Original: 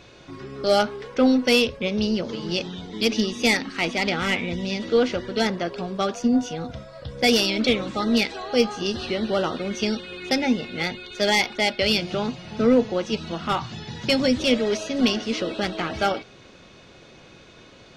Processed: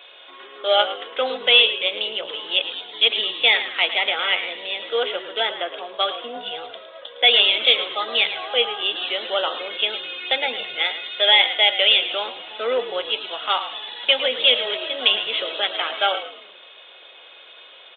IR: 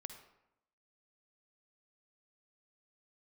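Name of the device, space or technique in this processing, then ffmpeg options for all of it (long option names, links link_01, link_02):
musical greeting card: -filter_complex "[0:a]aresample=8000,aresample=44100,highpass=frequency=530:width=0.5412,highpass=frequency=530:width=1.3066,equalizer=frequency=3300:width_type=o:width=0.52:gain=11.5,asettb=1/sr,asplit=3[link_01][link_02][link_03];[link_01]atrim=end=4.014[link_04];[link_02]atrim=start=4.01:end=5.94,asetpts=PTS-STARTPTS,afade=type=in:duration=0.004:curve=qsin,afade=type=out:start_time=1.926:duration=0.004:curve=qsin,highshelf=frequency=4100:gain=-7.5[link_05];[link_03]atrim=start=5.936[link_06];[link_04][link_05]acrossfade=duration=0.004:curve1=hsin:curve2=qsin[link_07];[link_07][link_06]acrossfade=duration=0.004:curve1=qsin:curve2=hsin,asplit=5[link_08][link_09][link_10][link_11][link_12];[link_09]adelay=109,afreqshift=-49,volume=-12dB[link_13];[link_10]adelay=218,afreqshift=-98,volume=-20.4dB[link_14];[link_11]adelay=327,afreqshift=-147,volume=-28.8dB[link_15];[link_12]adelay=436,afreqshift=-196,volume=-37.2dB[link_16];[link_08][link_13][link_14][link_15][link_16]amix=inputs=5:normalize=0,volume=2dB"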